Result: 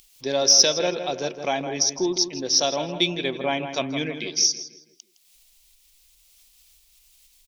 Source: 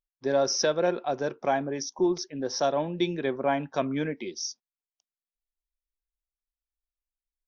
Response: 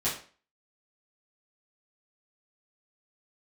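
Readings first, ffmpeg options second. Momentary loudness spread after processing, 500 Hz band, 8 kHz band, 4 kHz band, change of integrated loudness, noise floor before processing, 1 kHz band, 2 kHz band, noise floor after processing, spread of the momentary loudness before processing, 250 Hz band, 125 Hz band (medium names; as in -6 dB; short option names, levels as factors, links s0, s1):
13 LU, +0.5 dB, no reading, +14.0 dB, +6.5 dB, under -85 dBFS, +0.5 dB, +5.0 dB, -60 dBFS, 8 LU, +0.5 dB, +1.0 dB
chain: -filter_complex "[0:a]highshelf=f=4700:g=-8.5,acompressor=mode=upward:threshold=0.00501:ratio=2.5,aexciter=amount=5.6:drive=7.2:freq=2300,asplit=2[s0][s1];[s1]adelay=162,lowpass=f=2400:p=1,volume=0.376,asplit=2[s2][s3];[s3]adelay=162,lowpass=f=2400:p=1,volume=0.47,asplit=2[s4][s5];[s5]adelay=162,lowpass=f=2400:p=1,volume=0.47,asplit=2[s6][s7];[s7]adelay=162,lowpass=f=2400:p=1,volume=0.47,asplit=2[s8][s9];[s9]adelay=162,lowpass=f=2400:p=1,volume=0.47[s10];[s0][s2][s4][s6][s8][s10]amix=inputs=6:normalize=0"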